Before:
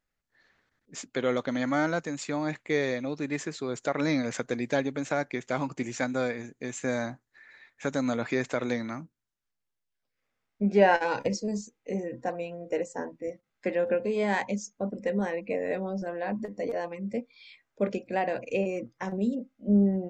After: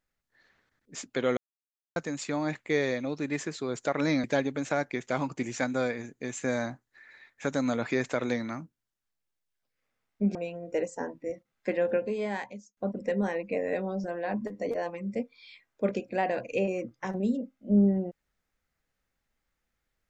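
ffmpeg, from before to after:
-filter_complex "[0:a]asplit=6[s0][s1][s2][s3][s4][s5];[s0]atrim=end=1.37,asetpts=PTS-STARTPTS,afade=t=out:st=1.366:d=0.004:c=hsin[s6];[s1]atrim=start=1.37:end=1.96,asetpts=PTS-STARTPTS,volume=0[s7];[s2]atrim=start=1.96:end=4.242,asetpts=PTS-STARTPTS,afade=t=in:d=0.004:c=hsin[s8];[s3]atrim=start=4.638:end=10.752[s9];[s4]atrim=start=12.328:end=14.75,asetpts=PTS-STARTPTS,afade=t=out:st=1.532:d=0.89[s10];[s5]atrim=start=14.75,asetpts=PTS-STARTPTS,afade=t=in:d=0.004:c=hsin[s11];[s6][s7][s8]concat=n=3:v=0:a=1[s12];[s12][s9]acrossfade=d=0.004:c1=hsin:c2=hsin[s13];[s10][s11]concat=n=2:v=0:a=1[s14];[s13][s14]acrossfade=d=0.004:c1=hsin:c2=hsin"

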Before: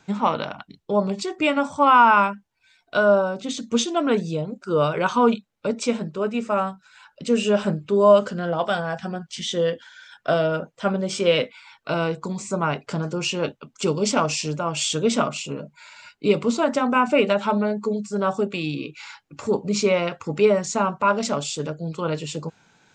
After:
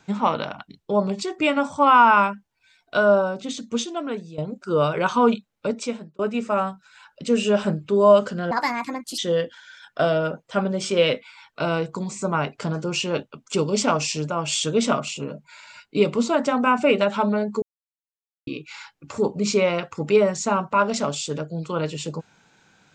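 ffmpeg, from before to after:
-filter_complex "[0:a]asplit=7[s0][s1][s2][s3][s4][s5][s6];[s0]atrim=end=4.38,asetpts=PTS-STARTPTS,afade=t=out:st=3.26:d=1.12:silence=0.188365[s7];[s1]atrim=start=4.38:end=6.19,asetpts=PTS-STARTPTS,afade=t=in:d=0.004:c=hsin:silence=0.188365,afade=t=out:st=1.28:d=0.53[s8];[s2]atrim=start=6.19:end=8.514,asetpts=PTS-STARTPTS,afade=t=in:d=0.004:c=hsin[s9];[s3]atrim=start=8.51:end=9.47,asetpts=PTS-STARTPTS,asetrate=63063,aresample=44100[s10];[s4]atrim=start=9.466:end=17.91,asetpts=PTS-STARTPTS,afade=t=out:st=8.44:d=0.004:c=hsin[s11];[s5]atrim=start=17.91:end=18.76,asetpts=PTS-STARTPTS,volume=0[s12];[s6]atrim=start=18.76,asetpts=PTS-STARTPTS,afade=t=in:d=0.004:c=hsin[s13];[s7][s8][s9]concat=n=3:v=0:a=1[s14];[s14][s10]acrossfade=d=0.004:c1=hsin:c2=hsin[s15];[s11][s12][s13]concat=n=3:v=0:a=1[s16];[s15][s16]acrossfade=d=0.004:c1=hsin:c2=hsin"

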